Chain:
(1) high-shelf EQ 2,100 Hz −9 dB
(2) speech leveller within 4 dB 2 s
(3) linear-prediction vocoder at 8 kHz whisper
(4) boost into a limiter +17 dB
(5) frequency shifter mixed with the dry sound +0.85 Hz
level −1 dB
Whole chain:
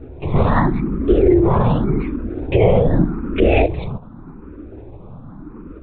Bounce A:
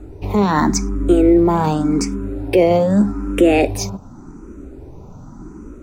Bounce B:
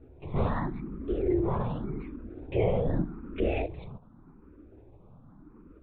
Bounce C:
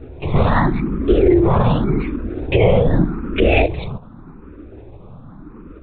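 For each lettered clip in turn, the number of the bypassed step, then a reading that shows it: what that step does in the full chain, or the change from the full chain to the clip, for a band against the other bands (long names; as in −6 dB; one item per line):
3, 125 Hz band −6.5 dB
4, change in momentary loudness spread −3 LU
1, 4 kHz band +5.0 dB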